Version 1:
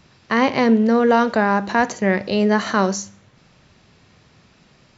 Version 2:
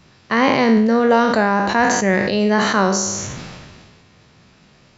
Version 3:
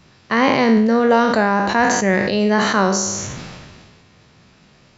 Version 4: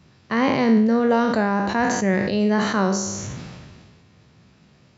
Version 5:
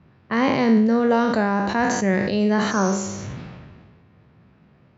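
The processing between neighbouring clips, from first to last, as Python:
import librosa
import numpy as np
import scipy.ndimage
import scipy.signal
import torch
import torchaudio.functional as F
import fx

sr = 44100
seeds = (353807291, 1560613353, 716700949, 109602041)

y1 = fx.spec_trails(x, sr, decay_s=0.55)
y1 = fx.sustainer(y1, sr, db_per_s=30.0)
y2 = y1
y3 = scipy.signal.sosfilt(scipy.signal.butter(2, 58.0, 'highpass', fs=sr, output='sos'), y2)
y3 = fx.low_shelf(y3, sr, hz=330.0, db=7.5)
y3 = y3 * 10.0 ** (-7.0 / 20.0)
y4 = fx.spec_repair(y3, sr, seeds[0], start_s=2.73, length_s=0.42, low_hz=1800.0, high_hz=6700.0, source='after')
y4 = fx.env_lowpass(y4, sr, base_hz=1900.0, full_db=-16.5)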